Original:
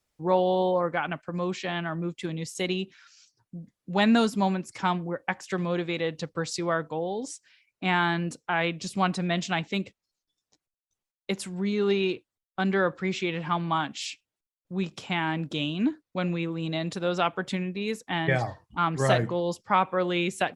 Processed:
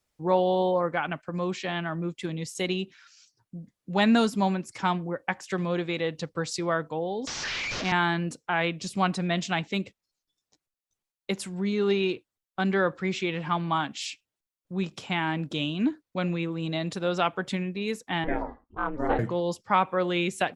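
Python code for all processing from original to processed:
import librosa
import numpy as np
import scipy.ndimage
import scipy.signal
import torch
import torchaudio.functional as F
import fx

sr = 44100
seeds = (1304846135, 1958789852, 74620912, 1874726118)

y = fx.chain(x, sr, fx.delta_mod(bps=32000, step_db=-25.5),
    fx.band_squash(depth_pct=40), at=(7.27, 7.92))
y = fx.chain(y, sr, fx.lowpass(hz=1400.0, slope=12),
    fx.ring_mod(carrier_hz=150.0), at=(18.24, 19.19))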